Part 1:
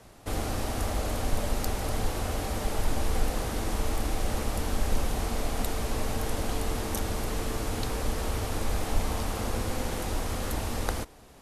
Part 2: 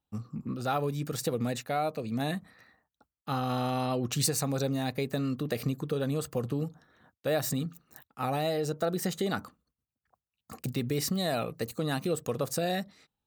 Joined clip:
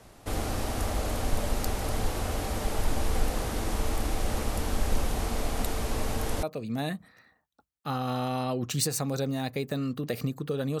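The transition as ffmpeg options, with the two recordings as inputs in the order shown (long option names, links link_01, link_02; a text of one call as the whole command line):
ffmpeg -i cue0.wav -i cue1.wav -filter_complex "[0:a]apad=whole_dur=10.8,atrim=end=10.8,atrim=end=6.432[link_01];[1:a]atrim=start=1.848:end=6.22[link_02];[link_01][link_02]acrossfade=duration=0.004:curve1=hsin:curve2=hsin" out.wav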